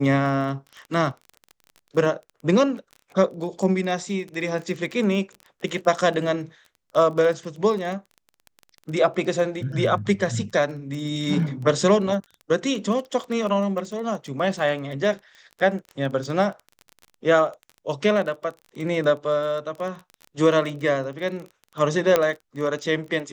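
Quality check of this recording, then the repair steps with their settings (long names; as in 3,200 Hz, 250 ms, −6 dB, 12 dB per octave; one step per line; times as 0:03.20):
surface crackle 21 per second −31 dBFS
0:22.16: click −5 dBFS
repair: click removal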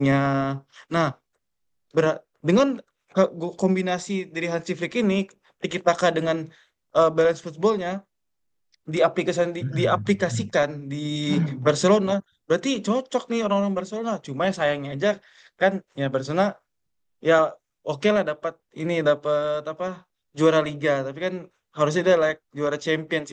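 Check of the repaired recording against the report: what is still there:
none of them is left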